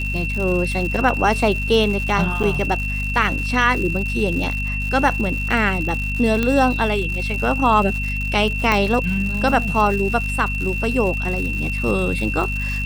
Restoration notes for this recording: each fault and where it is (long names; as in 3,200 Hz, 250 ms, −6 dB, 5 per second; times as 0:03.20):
surface crackle 190 per second −26 dBFS
mains hum 50 Hz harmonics 5 −25 dBFS
whistle 2,700 Hz −25 dBFS
0:02.43–0:02.44: drop-out 7.3 ms
0:06.43: click −7 dBFS
0:08.72: click −5 dBFS